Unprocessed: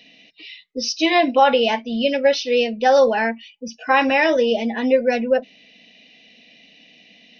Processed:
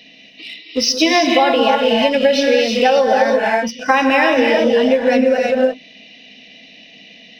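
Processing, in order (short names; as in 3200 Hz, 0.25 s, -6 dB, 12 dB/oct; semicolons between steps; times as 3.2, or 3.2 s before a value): non-linear reverb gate 0.36 s rising, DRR 1 dB; in parallel at -5 dB: crossover distortion -32.5 dBFS; on the sum: compressor, threshold -16 dBFS, peak gain reduction 11.5 dB; gain +5.5 dB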